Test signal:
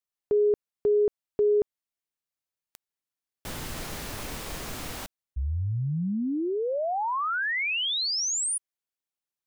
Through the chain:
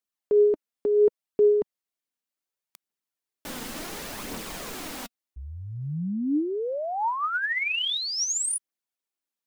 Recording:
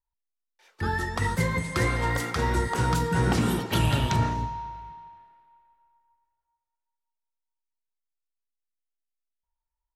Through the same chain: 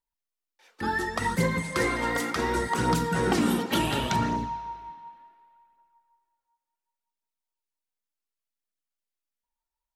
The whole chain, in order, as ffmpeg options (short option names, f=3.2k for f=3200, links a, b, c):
-af "aphaser=in_gain=1:out_gain=1:delay=4.3:decay=0.37:speed=0.69:type=triangular,lowshelf=f=150:t=q:w=1.5:g=-9.5"